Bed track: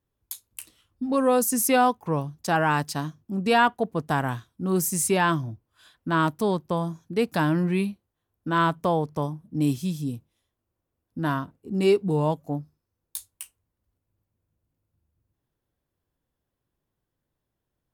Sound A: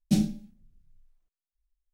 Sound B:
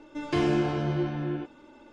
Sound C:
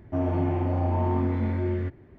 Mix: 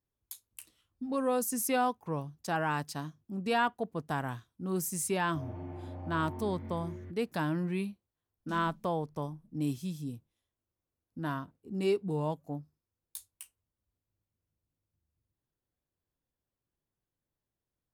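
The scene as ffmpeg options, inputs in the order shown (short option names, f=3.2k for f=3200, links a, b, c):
-filter_complex "[0:a]volume=-9dB[a];[1:a]acompressor=threshold=-25dB:ratio=6:attack=3.2:release=140:knee=1:detection=peak[b];[3:a]atrim=end=2.18,asetpts=PTS-STARTPTS,volume=-17dB,afade=t=in:d=0.004:c=hsin,afade=t=out:st=2.176:d=0.004:c=hsin,adelay=5220[c];[b]atrim=end=1.93,asetpts=PTS-STARTPTS,volume=-15.5dB,afade=t=in:d=0.004:c=hsin,afade=t=out:st=1.926:d=0.004:c=hsin,adelay=8380[d];[a][c][d]amix=inputs=3:normalize=0"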